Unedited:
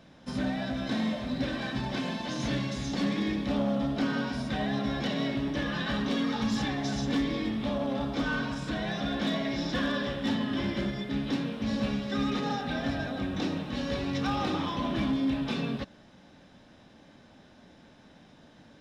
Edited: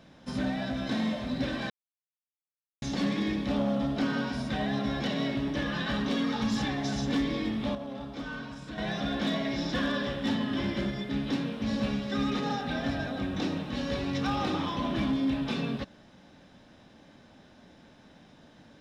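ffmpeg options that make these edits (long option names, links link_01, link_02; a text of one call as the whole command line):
ffmpeg -i in.wav -filter_complex "[0:a]asplit=5[link_01][link_02][link_03][link_04][link_05];[link_01]atrim=end=1.7,asetpts=PTS-STARTPTS,afade=type=out:start_time=1.696:duration=0.004:curve=hsin[link_06];[link_02]atrim=start=1.7:end=2.82,asetpts=PTS-STARTPTS,volume=0[link_07];[link_03]atrim=start=2.82:end=7.752,asetpts=PTS-STARTPTS,afade=type=in:duration=0.004:curve=hsin[link_08];[link_04]atrim=start=7.748:end=8.782,asetpts=PTS-STARTPTS,volume=-8dB[link_09];[link_05]atrim=start=8.778[link_10];[link_06][link_07][link_08]concat=n=3:v=0:a=1[link_11];[link_11][link_09]acrossfade=duration=0.004:curve1=hsin:curve2=hsin[link_12];[link_12][link_10]acrossfade=duration=0.004:curve1=hsin:curve2=hsin" out.wav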